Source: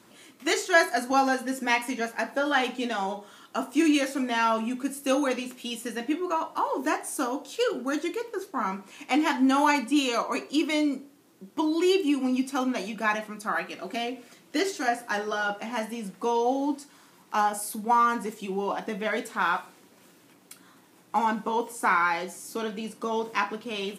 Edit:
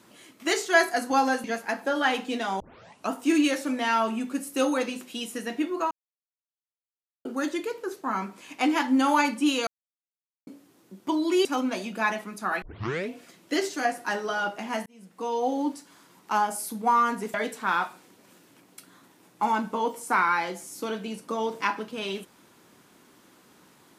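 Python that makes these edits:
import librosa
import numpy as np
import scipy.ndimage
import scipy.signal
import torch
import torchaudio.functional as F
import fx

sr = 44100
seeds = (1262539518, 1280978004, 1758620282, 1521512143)

y = fx.edit(x, sr, fx.cut(start_s=1.44, length_s=0.5),
    fx.tape_start(start_s=3.1, length_s=0.5),
    fx.silence(start_s=6.41, length_s=1.34),
    fx.silence(start_s=10.17, length_s=0.8),
    fx.cut(start_s=11.95, length_s=0.53),
    fx.tape_start(start_s=13.65, length_s=0.5),
    fx.fade_in_span(start_s=15.89, length_s=0.69),
    fx.cut(start_s=18.37, length_s=0.7), tone=tone)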